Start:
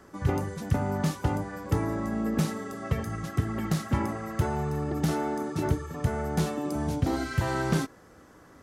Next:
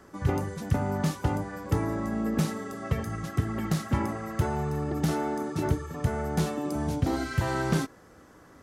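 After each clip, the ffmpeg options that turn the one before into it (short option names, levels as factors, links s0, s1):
-af anull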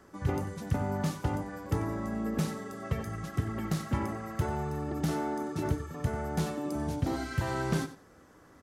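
-af "aecho=1:1:92|184:0.2|0.0359,volume=0.631"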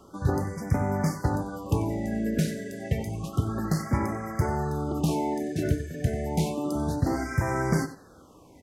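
-af "afftfilt=real='re*(1-between(b*sr/1024,990*pow(3500/990,0.5+0.5*sin(2*PI*0.3*pts/sr))/1.41,990*pow(3500/990,0.5+0.5*sin(2*PI*0.3*pts/sr))*1.41))':imag='im*(1-between(b*sr/1024,990*pow(3500/990,0.5+0.5*sin(2*PI*0.3*pts/sr))/1.41,990*pow(3500/990,0.5+0.5*sin(2*PI*0.3*pts/sr))*1.41))':win_size=1024:overlap=0.75,volume=1.78"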